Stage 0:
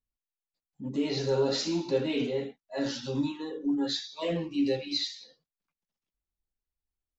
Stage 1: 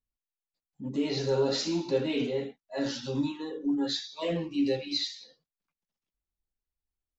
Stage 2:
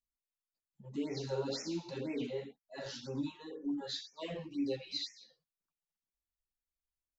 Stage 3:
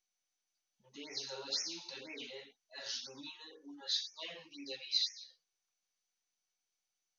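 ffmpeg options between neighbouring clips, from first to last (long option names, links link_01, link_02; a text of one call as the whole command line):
ffmpeg -i in.wav -af anull out.wav
ffmpeg -i in.wav -af "afftfilt=real='re*(1-between(b*sr/1024,230*pow(3800/230,0.5+0.5*sin(2*PI*2*pts/sr))/1.41,230*pow(3800/230,0.5+0.5*sin(2*PI*2*pts/sr))*1.41))':imag='im*(1-between(b*sr/1024,230*pow(3800/230,0.5+0.5*sin(2*PI*2*pts/sr))/1.41,230*pow(3800/230,0.5+0.5*sin(2*PI*2*pts/sr))*1.41))':win_size=1024:overlap=0.75,volume=-8dB" out.wav
ffmpeg -i in.wav -af "bandpass=frequency=5300:width_type=q:width=0.69:csg=0,volume=7dB" -ar 24000 -c:a mp2 -b:a 64k out.mp2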